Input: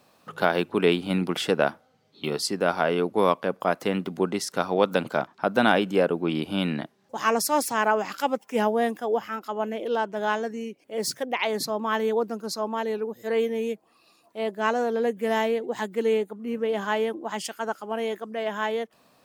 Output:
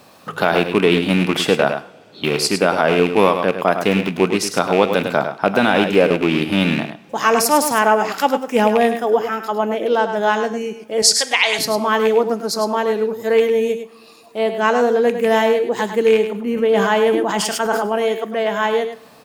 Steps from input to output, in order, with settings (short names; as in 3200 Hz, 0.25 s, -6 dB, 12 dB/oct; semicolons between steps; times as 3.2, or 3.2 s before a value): rattling part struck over -29 dBFS, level -20 dBFS; in parallel at 0 dB: compressor, threshold -40 dBFS, peak gain reduction 23.5 dB; 11.02–11.59 on the sum: weighting filter ITU-R 468; on a send: echo 0.103 s -9 dB; on the sum: two-slope reverb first 0.57 s, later 2.9 s, from -20 dB, DRR 13.5 dB; maximiser +8 dB; 16.29–18.03 sustainer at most 29 dB/s; gain -1 dB